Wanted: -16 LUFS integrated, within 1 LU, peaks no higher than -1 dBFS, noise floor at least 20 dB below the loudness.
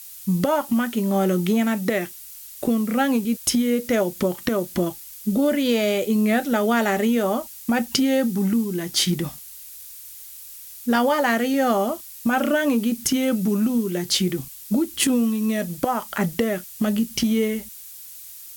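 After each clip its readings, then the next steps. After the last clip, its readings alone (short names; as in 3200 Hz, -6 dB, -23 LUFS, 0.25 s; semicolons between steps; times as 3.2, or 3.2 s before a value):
noise floor -41 dBFS; noise floor target -42 dBFS; loudness -22.0 LUFS; peak -5.5 dBFS; loudness target -16.0 LUFS
-> noise print and reduce 6 dB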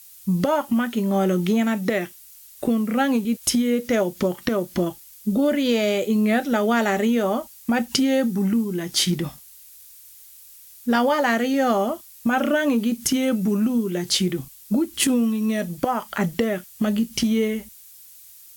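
noise floor -47 dBFS; loudness -22.5 LUFS; peak -6.0 dBFS; loudness target -16.0 LUFS
-> gain +6.5 dB; limiter -1 dBFS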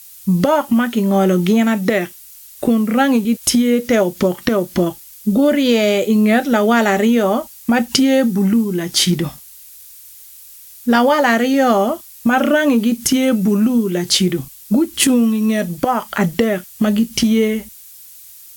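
loudness -16.0 LUFS; peak -1.0 dBFS; noise floor -40 dBFS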